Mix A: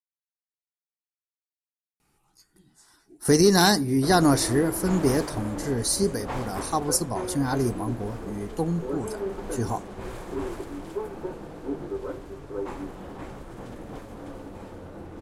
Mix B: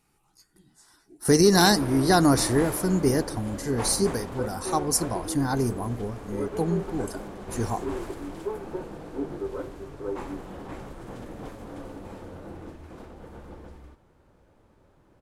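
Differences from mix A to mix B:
speech: entry −2.00 s
background: entry −2.50 s

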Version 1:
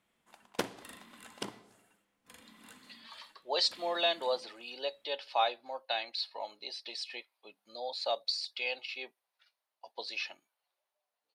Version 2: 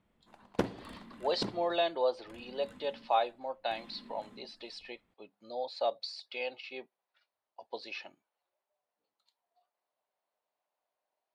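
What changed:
speech: entry −2.25 s
master: add spectral tilt −3.5 dB per octave

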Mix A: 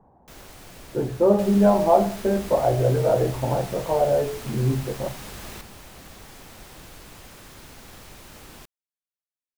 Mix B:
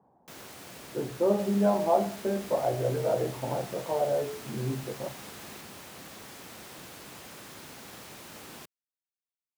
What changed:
speech −7.0 dB
second sound −8.0 dB
master: add high-pass filter 140 Hz 12 dB per octave

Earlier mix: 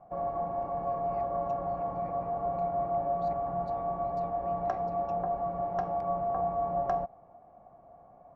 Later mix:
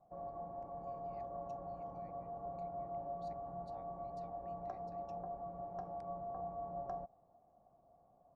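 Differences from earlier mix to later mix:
background −11.5 dB
master: add parametric band 2,300 Hz −10.5 dB 1.8 octaves

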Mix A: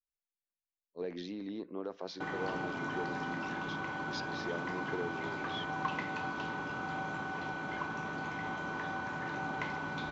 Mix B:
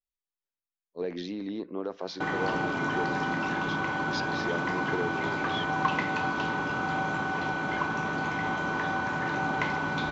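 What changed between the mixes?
speech +6.0 dB
background +8.5 dB

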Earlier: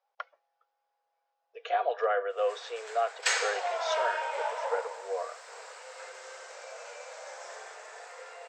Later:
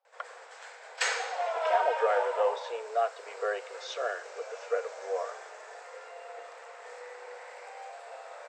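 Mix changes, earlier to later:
background: entry −2.25 s
master: add spectral tilt −1.5 dB per octave

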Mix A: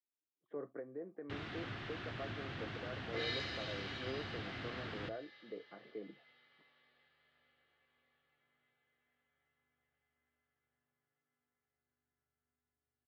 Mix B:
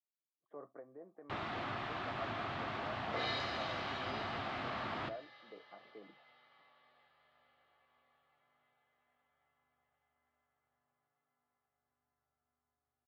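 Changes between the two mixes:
speech −8.5 dB
first sound: send on
master: add flat-topped bell 860 Hz +10 dB 1.3 octaves

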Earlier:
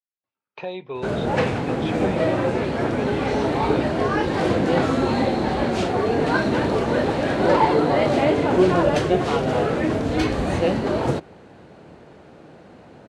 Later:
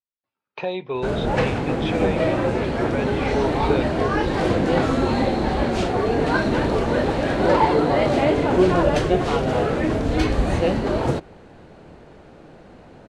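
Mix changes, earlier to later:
speech +4.5 dB
background: remove high-pass filter 86 Hz 12 dB per octave

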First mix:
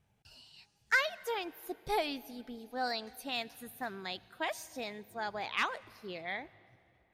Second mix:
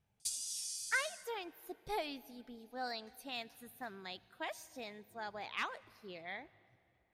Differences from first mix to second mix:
speech −6.5 dB
background: remove resonant band-pass 1,600 Hz, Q 17

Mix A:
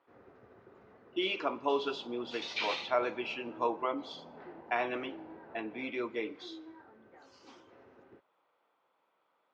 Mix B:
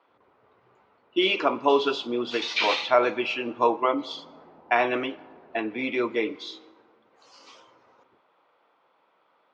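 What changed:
speech +10.0 dB
first sound −9.0 dB

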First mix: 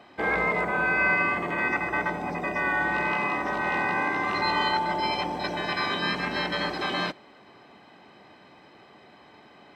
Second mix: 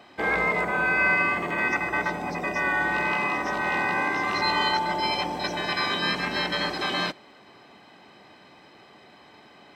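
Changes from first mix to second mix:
speech +7.0 dB
master: add high-shelf EQ 3,600 Hz +7 dB

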